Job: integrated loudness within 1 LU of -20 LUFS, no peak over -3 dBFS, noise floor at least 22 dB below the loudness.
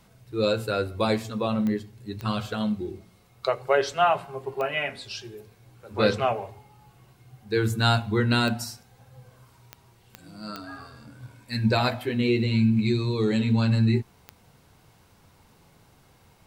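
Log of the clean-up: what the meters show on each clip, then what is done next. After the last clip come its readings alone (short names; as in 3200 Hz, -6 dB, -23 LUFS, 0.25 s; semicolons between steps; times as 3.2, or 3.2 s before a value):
clicks 8; loudness -25.5 LUFS; peak -7.0 dBFS; loudness target -20.0 LUFS
-> de-click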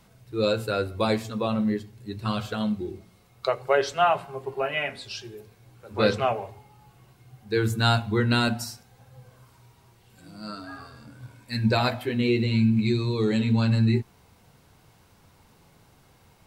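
clicks 0; loudness -25.5 LUFS; peak -7.0 dBFS; loudness target -20.0 LUFS
-> gain +5.5 dB; limiter -3 dBFS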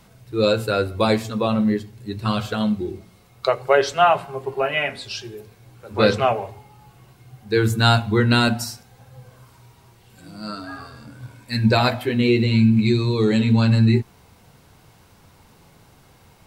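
loudness -20.0 LUFS; peak -3.0 dBFS; noise floor -53 dBFS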